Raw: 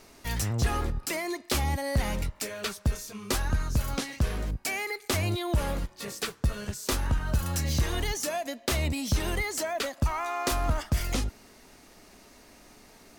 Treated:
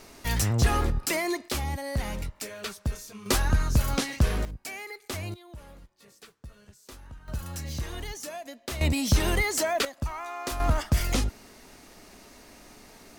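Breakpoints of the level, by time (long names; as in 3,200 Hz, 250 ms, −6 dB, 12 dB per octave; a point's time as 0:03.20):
+4 dB
from 0:01.48 −3 dB
from 0:03.26 +4 dB
from 0:04.45 −7 dB
from 0:05.34 −18.5 dB
from 0:07.28 −7 dB
from 0:08.81 +4.5 dB
from 0:09.85 −5 dB
from 0:10.60 +3 dB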